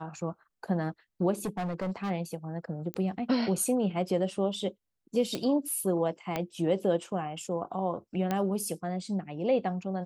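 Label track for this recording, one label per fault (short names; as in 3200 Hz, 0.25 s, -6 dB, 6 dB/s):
1.450000	2.110000	clipped -28.5 dBFS
2.940000	2.940000	pop -20 dBFS
5.350000	5.350000	pop -18 dBFS
6.360000	6.360000	pop -16 dBFS
8.310000	8.310000	pop -16 dBFS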